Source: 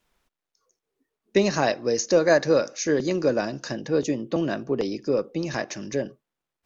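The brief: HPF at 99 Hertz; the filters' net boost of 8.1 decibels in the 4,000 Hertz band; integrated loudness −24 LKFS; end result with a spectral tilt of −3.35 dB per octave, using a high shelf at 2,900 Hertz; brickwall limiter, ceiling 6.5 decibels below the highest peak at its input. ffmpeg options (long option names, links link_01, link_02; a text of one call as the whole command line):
ffmpeg -i in.wav -af "highpass=99,highshelf=frequency=2900:gain=6.5,equalizer=frequency=4000:width_type=o:gain=4.5,volume=1dB,alimiter=limit=-11dB:level=0:latency=1" out.wav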